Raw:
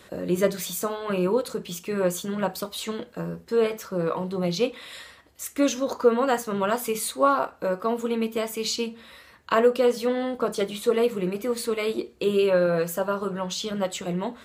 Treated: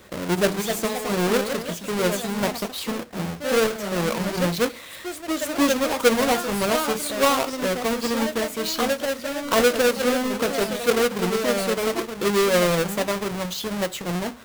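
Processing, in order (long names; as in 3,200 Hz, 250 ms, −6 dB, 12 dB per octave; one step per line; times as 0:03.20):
each half-wave held at its own peak
delay with pitch and tempo change per echo 307 ms, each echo +2 semitones, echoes 2, each echo −6 dB
level −2.5 dB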